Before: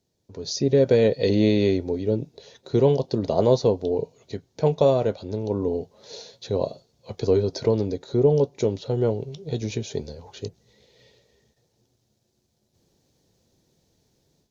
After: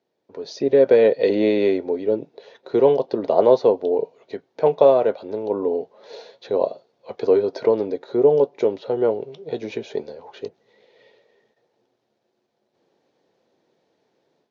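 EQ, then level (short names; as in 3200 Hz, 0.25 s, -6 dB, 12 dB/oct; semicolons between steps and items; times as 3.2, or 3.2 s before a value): BPF 400–2200 Hz; +6.5 dB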